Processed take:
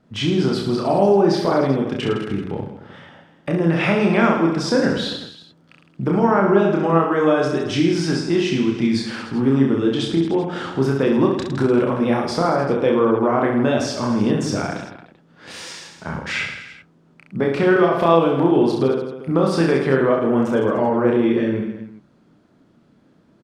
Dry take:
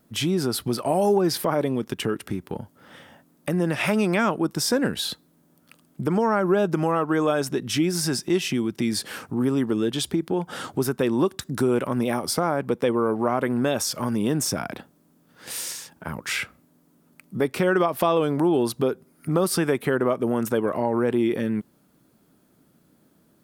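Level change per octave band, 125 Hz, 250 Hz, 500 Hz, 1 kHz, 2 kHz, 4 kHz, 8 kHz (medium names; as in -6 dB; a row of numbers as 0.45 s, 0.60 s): +6.0 dB, +6.0 dB, +5.5 dB, +5.5 dB, +5.0 dB, +1.5 dB, -6.5 dB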